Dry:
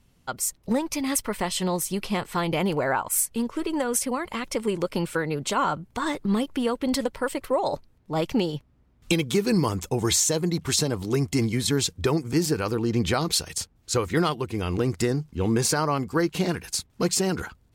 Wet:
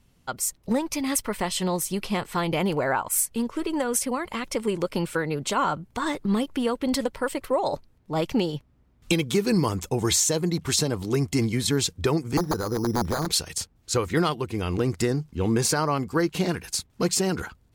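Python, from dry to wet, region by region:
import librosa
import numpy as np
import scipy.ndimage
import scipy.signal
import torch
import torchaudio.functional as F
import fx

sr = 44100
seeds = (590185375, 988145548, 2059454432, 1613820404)

y = fx.chain(x, sr, fx.overflow_wrap(gain_db=16.5),
    fx.lowpass(hz=1500.0, slope=24),
    fx.resample_bad(factor=8, down='filtered', up='hold'), at=(12.37, 13.27))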